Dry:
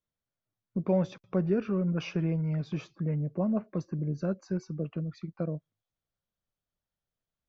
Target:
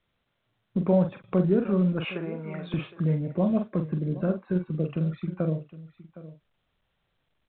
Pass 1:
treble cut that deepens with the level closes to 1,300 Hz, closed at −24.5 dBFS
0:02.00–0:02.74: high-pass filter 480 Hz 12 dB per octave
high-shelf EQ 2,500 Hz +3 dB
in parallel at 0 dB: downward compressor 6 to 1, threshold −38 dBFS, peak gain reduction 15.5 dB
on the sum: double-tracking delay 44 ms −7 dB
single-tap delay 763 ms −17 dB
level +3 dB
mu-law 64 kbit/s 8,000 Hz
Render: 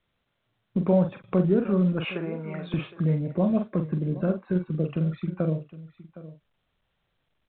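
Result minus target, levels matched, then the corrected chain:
downward compressor: peak gain reduction −5.5 dB
treble cut that deepens with the level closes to 1,300 Hz, closed at −24.5 dBFS
0:02.00–0:02.74: high-pass filter 480 Hz 12 dB per octave
high-shelf EQ 2,500 Hz +3 dB
in parallel at 0 dB: downward compressor 6 to 1, threshold −44.5 dBFS, peak gain reduction 21 dB
on the sum: double-tracking delay 44 ms −7 dB
single-tap delay 763 ms −17 dB
level +3 dB
mu-law 64 kbit/s 8,000 Hz

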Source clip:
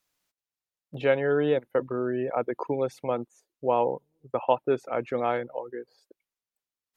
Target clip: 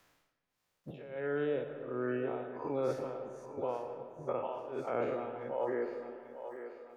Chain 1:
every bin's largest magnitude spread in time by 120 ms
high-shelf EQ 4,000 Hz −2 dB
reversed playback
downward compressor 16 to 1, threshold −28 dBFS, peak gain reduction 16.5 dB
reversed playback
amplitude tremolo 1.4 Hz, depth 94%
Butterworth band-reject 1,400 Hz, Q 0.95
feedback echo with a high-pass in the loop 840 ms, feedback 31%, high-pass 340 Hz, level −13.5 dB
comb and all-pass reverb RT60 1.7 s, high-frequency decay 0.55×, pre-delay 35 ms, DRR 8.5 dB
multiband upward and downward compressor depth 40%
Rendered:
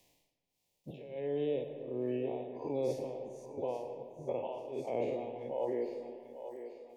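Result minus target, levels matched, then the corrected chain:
8,000 Hz band +3.5 dB; 1,000 Hz band −3.5 dB
every bin's largest magnitude spread in time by 120 ms
high-shelf EQ 4,000 Hz −8 dB
reversed playback
downward compressor 16 to 1, threshold −28 dBFS, peak gain reduction 16 dB
reversed playback
amplitude tremolo 1.4 Hz, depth 94%
feedback echo with a high-pass in the loop 840 ms, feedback 31%, high-pass 340 Hz, level −13.5 dB
comb and all-pass reverb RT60 1.7 s, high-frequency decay 0.55×, pre-delay 35 ms, DRR 8.5 dB
multiband upward and downward compressor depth 40%

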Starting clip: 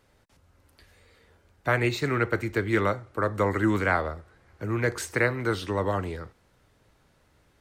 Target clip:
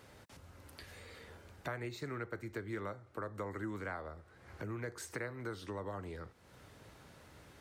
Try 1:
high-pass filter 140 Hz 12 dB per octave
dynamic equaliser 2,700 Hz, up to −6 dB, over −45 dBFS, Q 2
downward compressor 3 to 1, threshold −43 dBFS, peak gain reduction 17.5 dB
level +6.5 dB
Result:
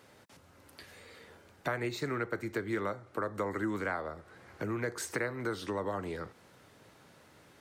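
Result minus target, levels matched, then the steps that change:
downward compressor: peak gain reduction −7.5 dB; 125 Hz band −4.5 dB
change: high-pass filter 65 Hz 12 dB per octave
change: downward compressor 3 to 1, threshold −54 dBFS, peak gain reduction 25 dB

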